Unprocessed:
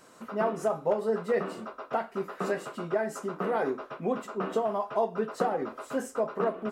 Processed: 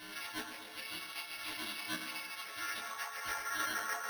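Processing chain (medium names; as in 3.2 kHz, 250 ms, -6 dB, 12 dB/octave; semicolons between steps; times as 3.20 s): partials quantised in pitch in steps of 4 st; bass shelf 350 Hz +7 dB; compression 16:1, threshold -29 dBFS, peak gain reduction 12.5 dB; wavefolder -25.5 dBFS; plain phase-vocoder stretch 0.61×; high-pass sweep 2.3 kHz -> 990 Hz, 1.82–5.14 s; harmony voices +3 st -3 dB, +5 st -8 dB; chorus voices 2, 0.94 Hz, delay 22 ms, depth 3 ms; two-band feedback delay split 2.4 kHz, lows 159 ms, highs 112 ms, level -10 dB; on a send at -7 dB: reverberation RT60 2.1 s, pre-delay 6 ms; on the sum: careless resampling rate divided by 6×, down none, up hold; trim +1 dB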